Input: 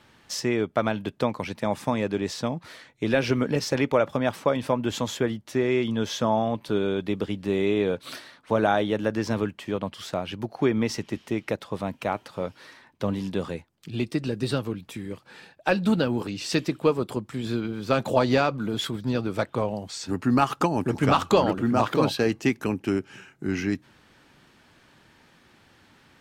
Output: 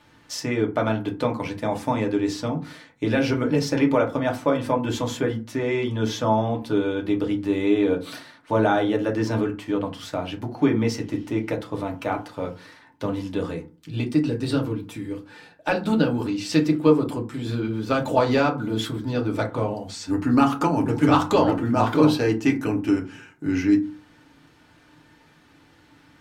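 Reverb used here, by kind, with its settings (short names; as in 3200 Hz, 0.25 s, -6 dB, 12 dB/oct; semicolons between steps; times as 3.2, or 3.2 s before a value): FDN reverb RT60 0.33 s, low-frequency decay 1.45×, high-frequency decay 0.5×, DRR 1 dB; gain -1.5 dB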